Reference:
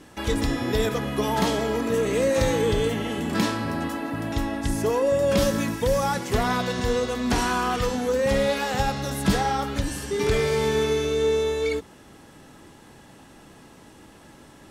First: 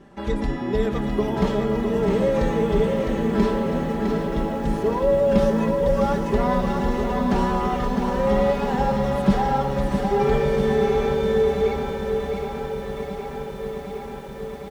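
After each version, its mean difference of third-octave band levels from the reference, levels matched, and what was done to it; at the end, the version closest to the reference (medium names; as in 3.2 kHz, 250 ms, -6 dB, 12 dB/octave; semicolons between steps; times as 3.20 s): 7.5 dB: low-pass 1 kHz 6 dB/octave; comb 5.1 ms, depth 78%; on a send: feedback delay 658 ms, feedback 52%, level -5.5 dB; on the sum: bit-crushed delay 765 ms, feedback 80%, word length 8-bit, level -10 dB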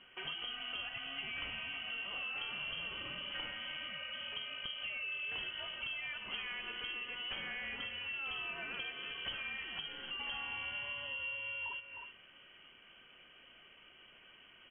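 14.0 dB: speakerphone echo 310 ms, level -12 dB; frequency inversion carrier 3.2 kHz; distance through air 400 m; compression 3:1, threshold -36 dBFS, peak gain reduction 10.5 dB; trim -5.5 dB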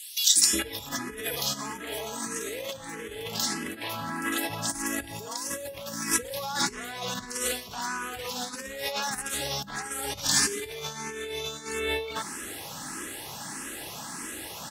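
11.0 dB: three bands offset in time highs, lows, mids 360/420 ms, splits 530/3300 Hz; compressor with a negative ratio -35 dBFS, ratio -1; tilt EQ +3 dB/octave; barber-pole phaser +1.6 Hz; trim +5.5 dB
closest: first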